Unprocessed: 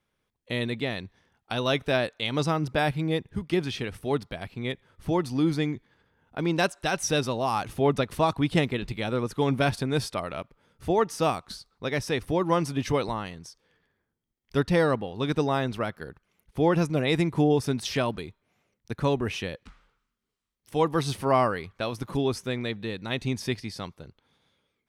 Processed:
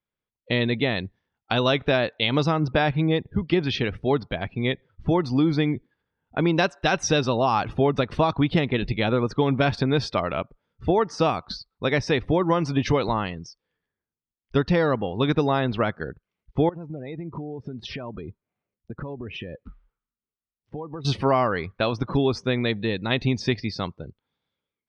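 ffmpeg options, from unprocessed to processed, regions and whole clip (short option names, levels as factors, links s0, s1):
-filter_complex "[0:a]asettb=1/sr,asplit=3[s0][s1][s2];[s0]atrim=end=16.694[s3];[s1]atrim=start=16.69:end=21.05,asetpts=PTS-STARTPTS,afade=t=in:d=0.004:c=qsin,afade=t=out:st=4.356:d=0.004:c=qsin,lowpass=f=1700:p=1,acompressor=threshold=0.0141:ratio=12:attack=3.2:release=140:knee=1:detection=peak[s4];[s2]atrim=start=21.046[s5];[s3][s4]acrossfade=d=0.004:c1=hsin:c2=qsin[s6];[s6][s5]acrossfade=d=0.004:c1=qsin:c2=hsin,afftdn=nr=20:nf=-48,lowpass=f=5300:w=0.5412,lowpass=f=5300:w=1.3066,acompressor=threshold=0.0631:ratio=6,volume=2.37"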